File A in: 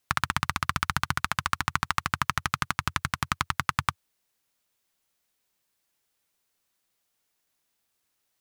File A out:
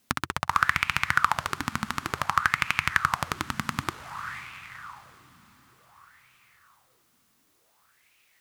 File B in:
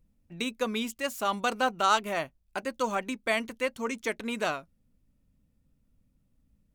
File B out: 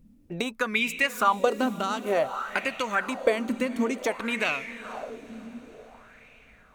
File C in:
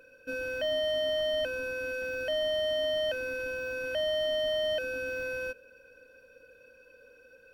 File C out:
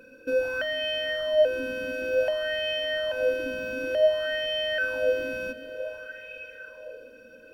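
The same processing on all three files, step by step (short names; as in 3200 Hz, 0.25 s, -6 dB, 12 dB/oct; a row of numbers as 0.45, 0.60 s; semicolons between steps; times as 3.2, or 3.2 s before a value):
compressor 5:1, threshold -35 dBFS; diffused feedback echo 0.5 s, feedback 52%, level -12.5 dB; LFO bell 0.55 Hz 220–2500 Hz +16 dB; match loudness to -27 LUFS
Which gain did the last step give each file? +8.5, +6.5, +3.5 dB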